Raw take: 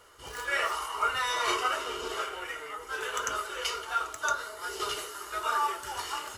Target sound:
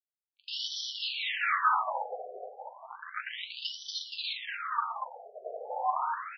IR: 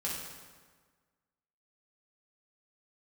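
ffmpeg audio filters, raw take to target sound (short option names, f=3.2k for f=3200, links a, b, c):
-filter_complex "[0:a]acrusher=bits=3:mix=0:aa=0.5,asplit=7[a][b][c][d][e][f][g];[b]adelay=236,afreqshift=-120,volume=-5.5dB[h];[c]adelay=472,afreqshift=-240,volume=-11.7dB[i];[d]adelay=708,afreqshift=-360,volume=-17.9dB[j];[e]adelay=944,afreqshift=-480,volume=-24.1dB[k];[f]adelay=1180,afreqshift=-600,volume=-30.3dB[l];[g]adelay=1416,afreqshift=-720,volume=-36.5dB[m];[a][h][i][j][k][l][m]amix=inputs=7:normalize=0,asplit=2[n][o];[o]highpass=f=720:p=1,volume=22dB,asoftclip=type=tanh:threshold=-12dB[p];[n][p]amix=inputs=2:normalize=0,lowpass=f=2.6k:p=1,volume=-6dB,asplit=2[q][r];[1:a]atrim=start_sample=2205,highshelf=f=4.9k:g=8[s];[r][s]afir=irnorm=-1:irlink=0,volume=-5dB[t];[q][t]amix=inputs=2:normalize=0,afftfilt=real='re*between(b*sr/1024,540*pow(4300/540,0.5+0.5*sin(2*PI*0.32*pts/sr))/1.41,540*pow(4300/540,0.5+0.5*sin(2*PI*0.32*pts/sr))*1.41)':imag='im*between(b*sr/1024,540*pow(4300/540,0.5+0.5*sin(2*PI*0.32*pts/sr))/1.41,540*pow(4300/540,0.5+0.5*sin(2*PI*0.32*pts/sr))*1.41)':win_size=1024:overlap=0.75,volume=-5dB"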